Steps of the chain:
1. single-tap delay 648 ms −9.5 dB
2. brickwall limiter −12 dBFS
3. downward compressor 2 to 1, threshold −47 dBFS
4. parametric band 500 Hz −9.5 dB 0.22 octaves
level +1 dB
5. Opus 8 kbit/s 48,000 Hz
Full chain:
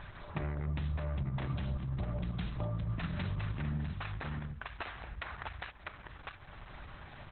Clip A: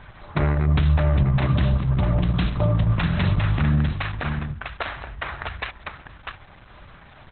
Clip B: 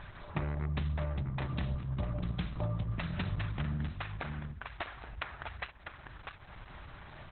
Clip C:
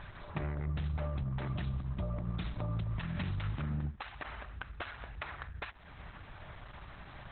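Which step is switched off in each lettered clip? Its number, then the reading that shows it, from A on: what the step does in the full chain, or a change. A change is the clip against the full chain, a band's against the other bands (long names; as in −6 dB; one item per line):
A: 3, average gain reduction 11.5 dB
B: 2, change in crest factor +3.5 dB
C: 1, change in momentary loudness spread +1 LU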